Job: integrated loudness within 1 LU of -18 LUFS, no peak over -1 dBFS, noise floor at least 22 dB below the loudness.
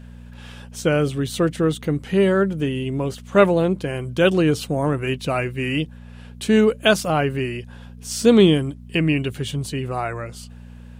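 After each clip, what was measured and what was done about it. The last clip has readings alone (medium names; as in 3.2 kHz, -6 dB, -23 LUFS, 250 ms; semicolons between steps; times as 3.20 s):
hum 60 Hz; highest harmonic 240 Hz; hum level -38 dBFS; loudness -20.5 LUFS; peak level -2.5 dBFS; loudness target -18.0 LUFS
-> de-hum 60 Hz, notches 4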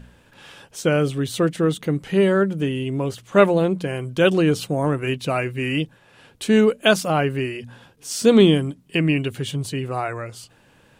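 hum not found; loudness -20.5 LUFS; peak level -2.5 dBFS; loudness target -18.0 LUFS
-> trim +2.5 dB; peak limiter -1 dBFS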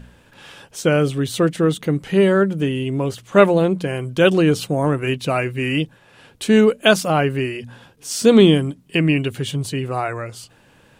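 loudness -18.0 LUFS; peak level -1.0 dBFS; noise floor -53 dBFS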